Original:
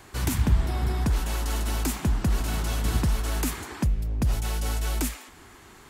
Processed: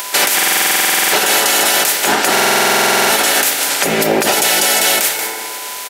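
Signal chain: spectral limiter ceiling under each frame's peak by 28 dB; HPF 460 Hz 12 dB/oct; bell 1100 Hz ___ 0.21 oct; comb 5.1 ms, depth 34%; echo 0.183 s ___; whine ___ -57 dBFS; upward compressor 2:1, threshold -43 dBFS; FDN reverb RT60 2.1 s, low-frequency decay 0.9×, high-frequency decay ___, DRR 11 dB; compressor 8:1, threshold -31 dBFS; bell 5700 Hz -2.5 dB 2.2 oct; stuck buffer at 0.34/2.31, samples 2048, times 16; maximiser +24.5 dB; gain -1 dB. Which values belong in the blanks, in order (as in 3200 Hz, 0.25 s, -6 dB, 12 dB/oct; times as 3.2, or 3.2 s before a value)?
-12.5 dB, -18 dB, 1000 Hz, 0.4×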